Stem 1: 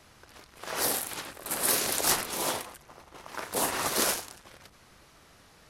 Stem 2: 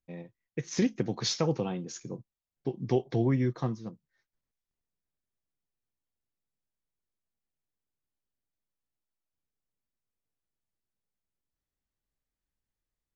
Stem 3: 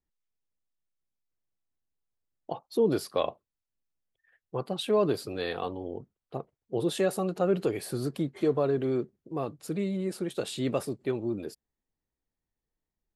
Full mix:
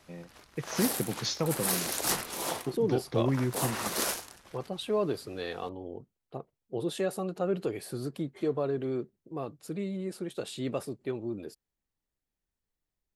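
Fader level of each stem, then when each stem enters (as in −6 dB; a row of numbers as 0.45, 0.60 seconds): −4.0, −2.0, −4.0 decibels; 0.00, 0.00, 0.00 seconds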